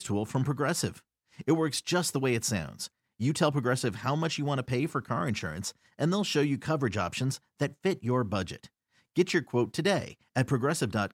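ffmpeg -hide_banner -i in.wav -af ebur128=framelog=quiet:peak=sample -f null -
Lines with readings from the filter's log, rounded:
Integrated loudness:
  I:         -29.9 LUFS
  Threshold: -40.2 LUFS
Loudness range:
  LRA:         1.2 LU
  Threshold: -50.3 LUFS
  LRA low:   -30.8 LUFS
  LRA high:  -29.5 LUFS
Sample peak:
  Peak:      -11.9 dBFS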